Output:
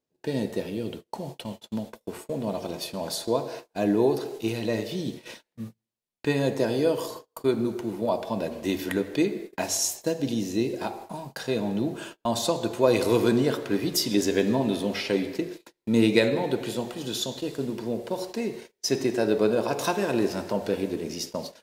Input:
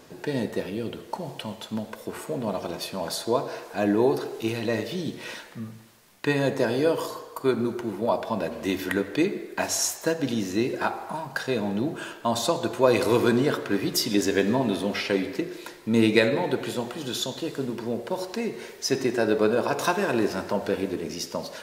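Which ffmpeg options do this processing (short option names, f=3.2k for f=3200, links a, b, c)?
-af "agate=range=-35dB:threshold=-36dB:ratio=16:detection=peak,asetnsamples=n=441:p=0,asendcmd='9.77 equalizer g -13;11.38 equalizer g -6',equalizer=f=1.4k:t=o:w=1.2:g=-7"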